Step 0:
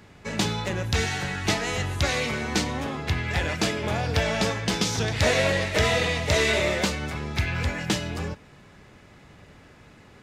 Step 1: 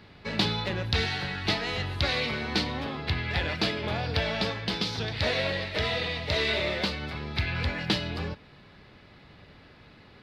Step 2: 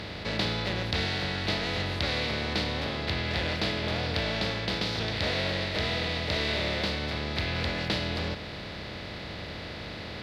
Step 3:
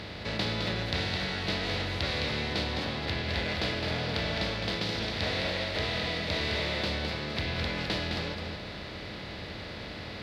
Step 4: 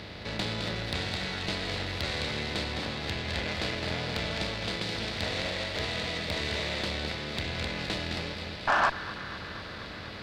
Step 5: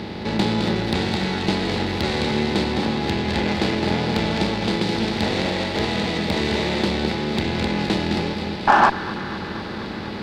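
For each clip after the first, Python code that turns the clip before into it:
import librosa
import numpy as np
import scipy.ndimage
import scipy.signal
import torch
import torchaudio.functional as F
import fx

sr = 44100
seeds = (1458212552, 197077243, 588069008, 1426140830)

y1 = fx.high_shelf_res(x, sr, hz=5500.0, db=-8.5, q=3.0)
y1 = fx.rider(y1, sr, range_db=5, speed_s=2.0)
y1 = y1 * 10.0 ** (-5.0 / 20.0)
y2 = fx.bin_compress(y1, sr, power=0.4)
y2 = y2 * 10.0 ** (-7.0 / 20.0)
y3 = y2 + 10.0 ** (-5.5 / 20.0) * np.pad(y2, (int(211 * sr / 1000.0), 0))[:len(y2)]
y3 = y3 * 10.0 ** (-2.5 / 20.0)
y4 = fx.spec_paint(y3, sr, seeds[0], shape='noise', start_s=8.67, length_s=0.23, low_hz=560.0, high_hz=1800.0, level_db=-22.0)
y4 = fx.echo_wet_highpass(y4, sr, ms=242, feedback_pct=77, hz=1500.0, wet_db=-10.0)
y4 = fx.cheby_harmonics(y4, sr, harmonics=(6,), levels_db=(-19,), full_scale_db=-10.5)
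y4 = y4 * 10.0 ** (-2.0 / 20.0)
y5 = fx.small_body(y4, sr, hz=(220.0, 350.0, 820.0), ring_ms=30, db=12)
y5 = y5 * 10.0 ** (5.5 / 20.0)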